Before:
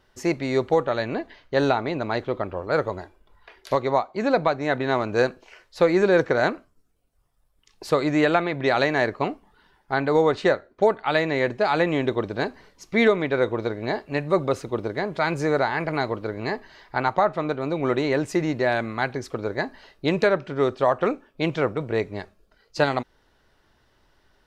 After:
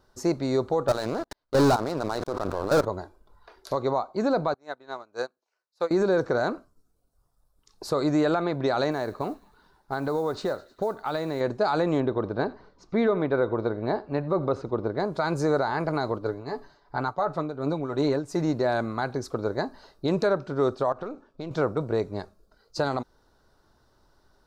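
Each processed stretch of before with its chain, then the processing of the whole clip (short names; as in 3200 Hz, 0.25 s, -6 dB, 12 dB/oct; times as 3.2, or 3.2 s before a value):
0.88–2.85 low shelf 300 Hz -3 dB + level quantiser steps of 23 dB + sample leveller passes 5
4.54–5.91 HPF 750 Hz 6 dB/oct + upward expander 2.5:1, over -36 dBFS
8.91–11.41 compressor 3:1, threshold -25 dBFS + modulation noise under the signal 32 dB + thin delay 0.104 s, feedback 64%, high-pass 2400 Hz, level -17 dB
12–15 LPF 3000 Hz + echo 86 ms -22.5 dB
16.18–18.41 comb 7 ms, depth 43% + tremolo triangle 2.8 Hz, depth 75% + mismatched tape noise reduction decoder only
20.92–21.51 half-wave gain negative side -3 dB + LPF 6500 Hz + compressor 5:1, threshold -31 dBFS
whole clip: band shelf 2400 Hz -11.5 dB 1.1 oct; limiter -15 dBFS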